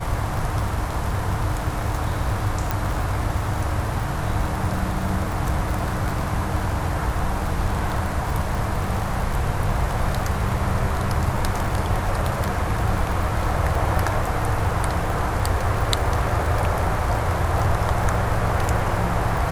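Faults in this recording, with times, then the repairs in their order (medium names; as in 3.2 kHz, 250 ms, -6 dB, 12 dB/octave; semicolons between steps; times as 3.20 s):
crackle 59 per s -26 dBFS
2.71 s: pop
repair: de-click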